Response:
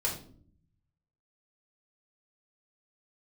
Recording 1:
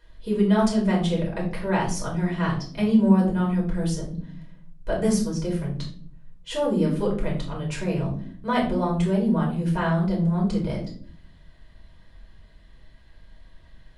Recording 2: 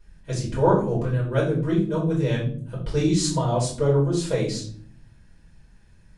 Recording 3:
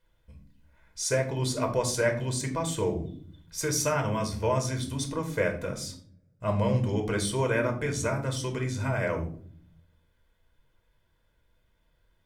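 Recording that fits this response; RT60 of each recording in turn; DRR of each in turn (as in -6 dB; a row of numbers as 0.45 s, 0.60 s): 1; 0.50 s, 0.50 s, 0.55 s; -3.5 dB, -8.0 dB, 3.5 dB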